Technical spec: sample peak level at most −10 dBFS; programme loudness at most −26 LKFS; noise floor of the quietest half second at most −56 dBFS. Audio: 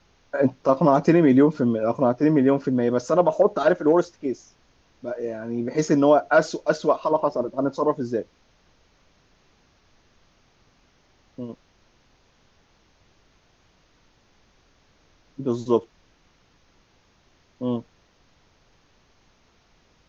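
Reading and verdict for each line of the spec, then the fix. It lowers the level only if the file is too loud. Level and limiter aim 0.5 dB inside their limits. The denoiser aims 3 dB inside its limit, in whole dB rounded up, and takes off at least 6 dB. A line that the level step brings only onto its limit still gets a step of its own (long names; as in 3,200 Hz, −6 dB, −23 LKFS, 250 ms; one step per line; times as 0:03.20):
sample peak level −5.5 dBFS: out of spec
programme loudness −21.5 LKFS: out of spec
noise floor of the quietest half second −61 dBFS: in spec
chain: level −5 dB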